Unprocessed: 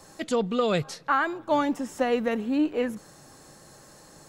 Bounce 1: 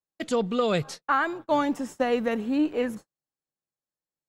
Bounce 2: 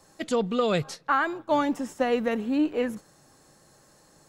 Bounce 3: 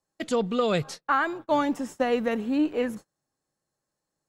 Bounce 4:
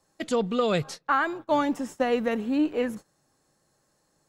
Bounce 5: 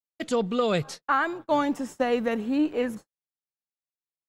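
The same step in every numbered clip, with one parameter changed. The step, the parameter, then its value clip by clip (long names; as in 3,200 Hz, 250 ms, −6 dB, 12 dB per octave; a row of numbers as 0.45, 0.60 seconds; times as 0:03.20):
noise gate, range: −48, −7, −33, −19, −60 decibels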